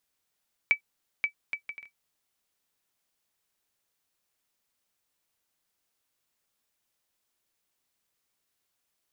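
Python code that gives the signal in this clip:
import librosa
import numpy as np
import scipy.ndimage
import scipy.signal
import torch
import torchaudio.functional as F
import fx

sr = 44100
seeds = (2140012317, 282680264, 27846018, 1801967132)

y = fx.bouncing_ball(sr, first_gap_s=0.53, ratio=0.55, hz=2300.0, decay_ms=97.0, level_db=-12.0)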